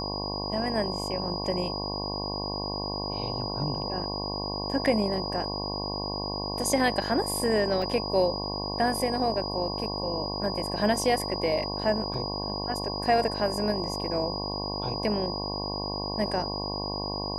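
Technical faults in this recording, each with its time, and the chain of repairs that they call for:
buzz 50 Hz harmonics 22 -34 dBFS
tone 4900 Hz -34 dBFS
7.82 gap 2.4 ms
12.14 gap 3.1 ms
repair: de-hum 50 Hz, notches 22; notch 4900 Hz, Q 30; interpolate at 7.82, 2.4 ms; interpolate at 12.14, 3.1 ms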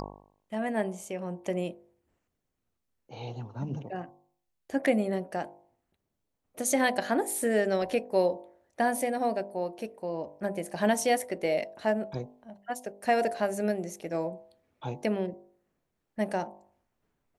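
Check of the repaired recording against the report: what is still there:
none

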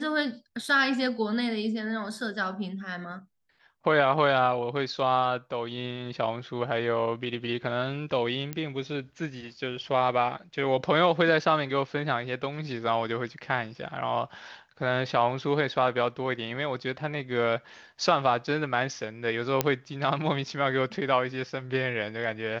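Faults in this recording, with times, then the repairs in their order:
8.53 pop -18 dBFS
19.61 pop -7 dBFS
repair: de-click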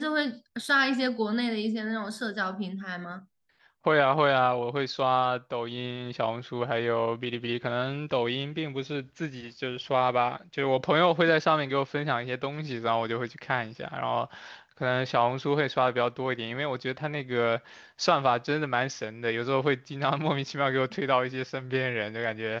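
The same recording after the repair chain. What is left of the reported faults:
none

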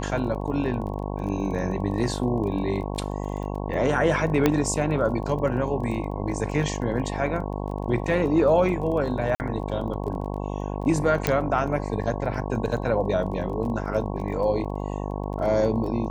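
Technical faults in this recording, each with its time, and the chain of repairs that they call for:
buzz 50 Hz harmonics 22 -30 dBFS
crackle 21/s -34 dBFS
4.46 pop -6 dBFS
9.35–9.4 gap 49 ms
11.27 pop -6 dBFS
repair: de-click; de-hum 50 Hz, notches 22; interpolate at 9.35, 49 ms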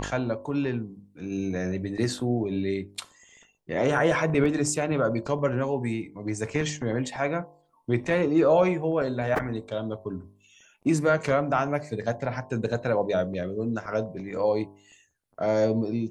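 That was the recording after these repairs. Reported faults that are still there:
4.46 pop

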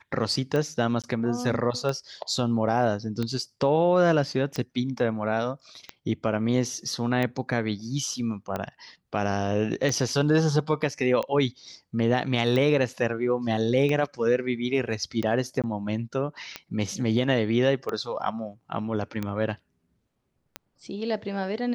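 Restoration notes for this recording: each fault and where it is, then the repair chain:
tick 45 rpm -16 dBFS
1.02–1.04 gap 17 ms
15.62–15.64 gap 17 ms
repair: de-click; interpolate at 1.02, 17 ms; interpolate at 15.62, 17 ms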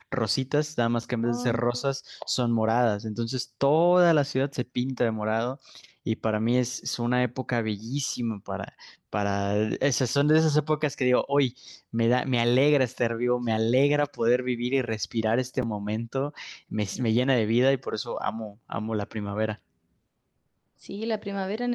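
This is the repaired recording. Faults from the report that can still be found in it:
none

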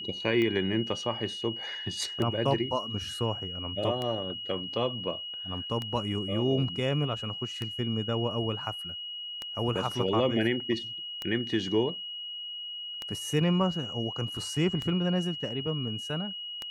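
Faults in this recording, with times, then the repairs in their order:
tick 33 1/3 rpm -19 dBFS
tone 2900 Hz -36 dBFS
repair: de-click; notch 2900 Hz, Q 30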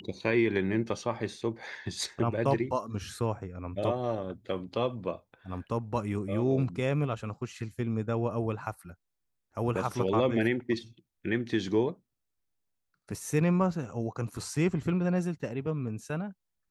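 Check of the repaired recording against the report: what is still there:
none

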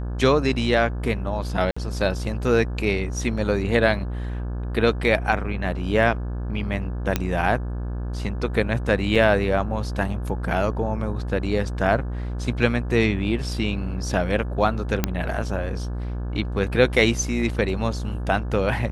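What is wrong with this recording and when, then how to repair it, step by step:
buzz 60 Hz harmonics 29 -28 dBFS
1.71–1.76 gap 55 ms
7.16 pop -6 dBFS
9.15–9.16 gap 6 ms
15.04 pop -5 dBFS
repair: de-click; de-hum 60 Hz, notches 29; interpolate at 1.71, 55 ms; interpolate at 9.15, 6 ms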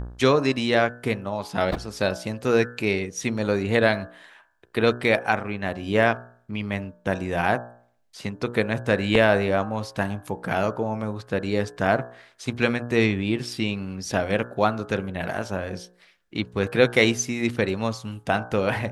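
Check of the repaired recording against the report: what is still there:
none

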